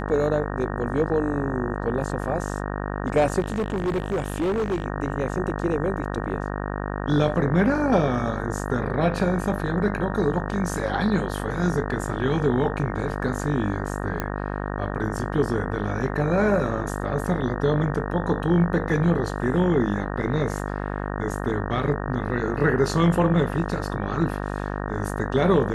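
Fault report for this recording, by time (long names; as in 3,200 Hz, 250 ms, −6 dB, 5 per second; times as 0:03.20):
mains buzz 50 Hz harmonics 37 −29 dBFS
0:03.39–0:04.86: clipping −20.5 dBFS
0:14.20: click −12 dBFS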